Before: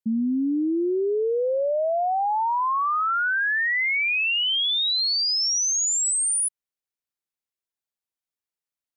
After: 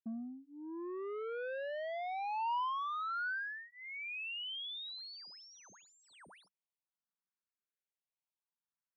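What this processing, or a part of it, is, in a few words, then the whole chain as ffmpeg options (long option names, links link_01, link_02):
barber-pole phaser into a guitar amplifier: -filter_complex "[0:a]asplit=2[link_01][link_02];[link_02]afreqshift=0.64[link_03];[link_01][link_03]amix=inputs=2:normalize=1,asoftclip=type=tanh:threshold=-33dB,highpass=110,equalizer=frequency=190:width_type=q:width=4:gain=9,equalizer=frequency=960:width_type=q:width=4:gain=7,equalizer=frequency=1500:width_type=q:width=4:gain=5,lowpass=frequency=3600:width=0.5412,lowpass=frequency=3600:width=1.3066,volume=-7dB"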